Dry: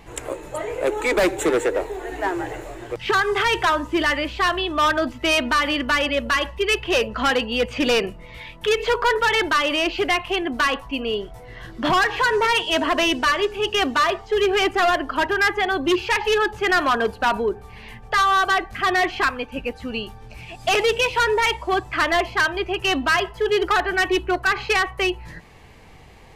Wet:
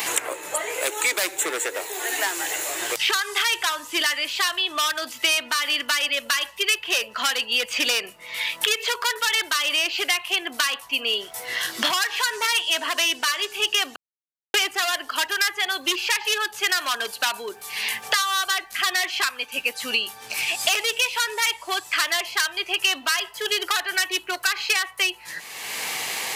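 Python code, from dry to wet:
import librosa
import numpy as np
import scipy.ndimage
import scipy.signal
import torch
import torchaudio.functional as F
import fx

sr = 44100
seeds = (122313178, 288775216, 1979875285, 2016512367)

y = fx.edit(x, sr, fx.silence(start_s=13.96, length_s=0.58), tone=tone)
y = np.diff(y, prepend=0.0)
y = fx.band_squash(y, sr, depth_pct=100)
y = y * librosa.db_to_amplitude(9.0)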